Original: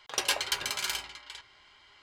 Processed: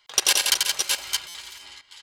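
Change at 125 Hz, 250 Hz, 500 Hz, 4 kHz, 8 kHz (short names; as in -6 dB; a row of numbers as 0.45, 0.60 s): n/a, +3.0 dB, +2.5 dB, +9.5 dB, +12.5 dB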